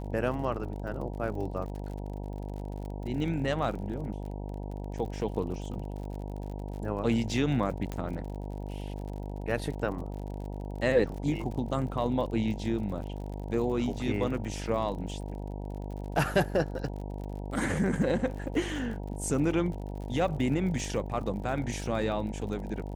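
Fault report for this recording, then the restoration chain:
mains buzz 50 Hz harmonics 19 −37 dBFS
surface crackle 51 per second −39 dBFS
0:07.92: click −21 dBFS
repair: click removal
hum removal 50 Hz, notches 19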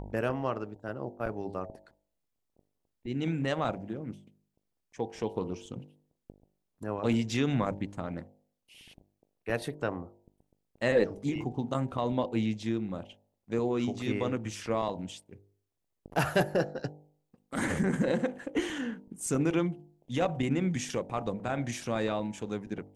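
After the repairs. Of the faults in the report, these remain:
none of them is left

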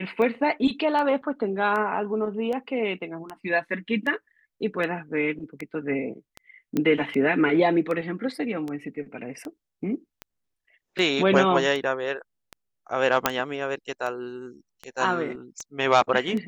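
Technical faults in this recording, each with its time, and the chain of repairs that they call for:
scratch tick 78 rpm −20 dBFS
0:06.77: click −13 dBFS
0:13.26: click −2 dBFS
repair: click removal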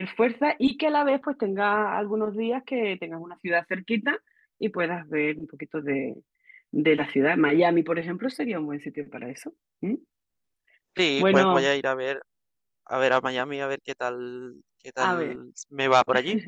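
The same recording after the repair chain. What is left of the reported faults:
none of them is left

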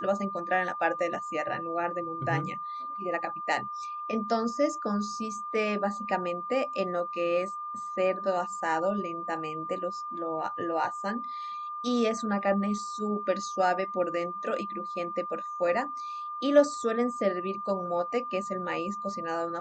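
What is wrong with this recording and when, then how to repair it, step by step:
whistle 1,200 Hz −34 dBFS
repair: notch filter 1,200 Hz, Q 30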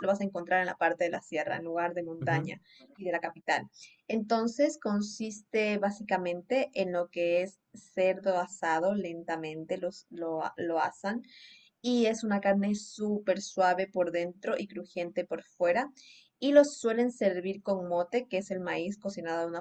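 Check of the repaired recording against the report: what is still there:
none of them is left

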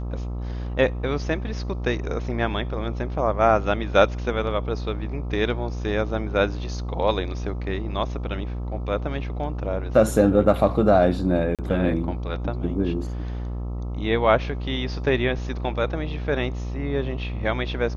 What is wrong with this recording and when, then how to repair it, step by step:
mains buzz 60 Hz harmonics 22 −29 dBFS
0:11.55–0:11.59: drop-out 37 ms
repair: hum removal 60 Hz, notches 22
repair the gap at 0:11.55, 37 ms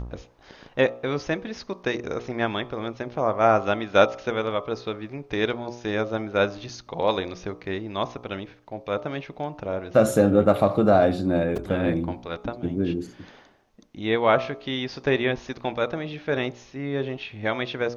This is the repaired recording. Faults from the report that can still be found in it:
none of them is left

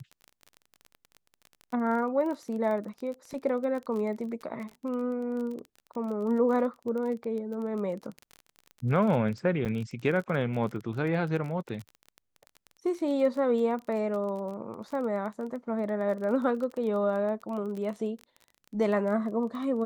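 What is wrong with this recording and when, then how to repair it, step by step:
surface crackle 24 per second −35 dBFS
0:09.65–0:09.66: drop-out 8.2 ms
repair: click removal
repair the gap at 0:09.65, 8.2 ms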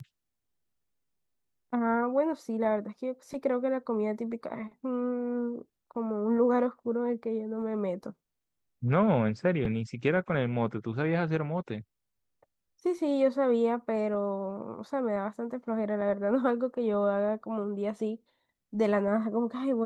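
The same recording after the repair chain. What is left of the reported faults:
none of them is left

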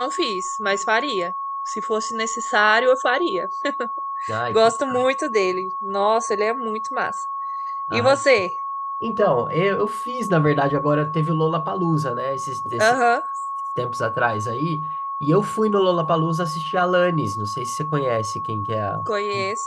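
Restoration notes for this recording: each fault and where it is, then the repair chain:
whistle 1,100 Hz −25 dBFS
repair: notch filter 1,100 Hz, Q 30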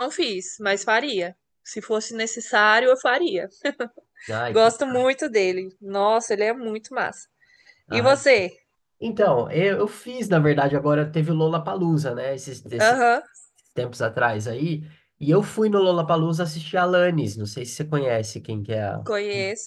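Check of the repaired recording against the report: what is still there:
none of them is left

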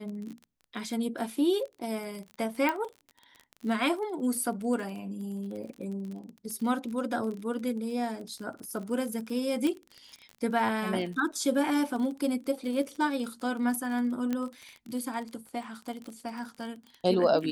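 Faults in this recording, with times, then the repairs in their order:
surface crackle 31 per second −36 dBFS
0:02.69: click −15 dBFS
0:09.67: click −19 dBFS
0:14.33: click −18 dBFS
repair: click removal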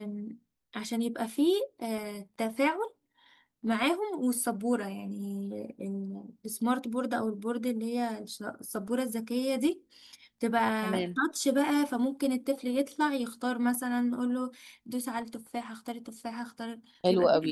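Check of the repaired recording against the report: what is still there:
0:02.69: click

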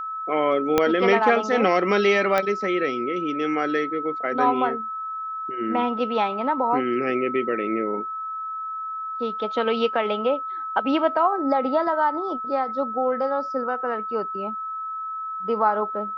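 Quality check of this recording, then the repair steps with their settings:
whistle 1,300 Hz −28 dBFS
0:00.78: click −5 dBFS
0:02.38: click −9 dBFS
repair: click removal
notch filter 1,300 Hz, Q 30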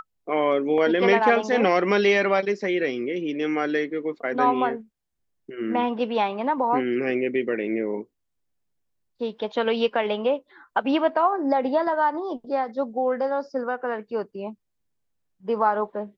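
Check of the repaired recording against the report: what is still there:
0:00.78: click

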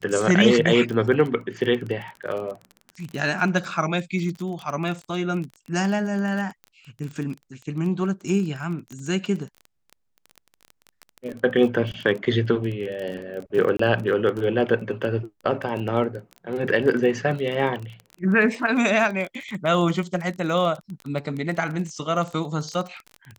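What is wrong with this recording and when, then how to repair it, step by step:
surface crackle 22 per second −29 dBFS
0:13.77–0:13.79: drop-out 24 ms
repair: click removal
repair the gap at 0:13.77, 24 ms

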